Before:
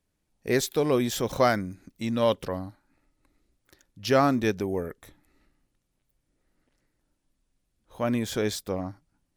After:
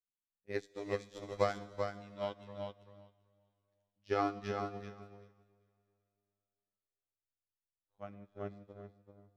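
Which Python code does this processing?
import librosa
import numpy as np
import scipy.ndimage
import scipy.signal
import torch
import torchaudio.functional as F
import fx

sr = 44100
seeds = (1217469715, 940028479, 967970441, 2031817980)

y = fx.bessel_lowpass(x, sr, hz=fx.steps((0.0, 4500.0), (8.12, 1000.0)), order=2)
y = fx.robotise(y, sr, hz=101.0)
y = fx.echo_feedback(y, sr, ms=388, feedback_pct=30, wet_db=-3.0)
y = fx.rev_plate(y, sr, seeds[0], rt60_s=2.9, hf_ratio=0.95, predelay_ms=0, drr_db=6.0)
y = fx.upward_expand(y, sr, threshold_db=-38.0, expansion=2.5)
y = F.gain(torch.from_numpy(y), -5.5).numpy()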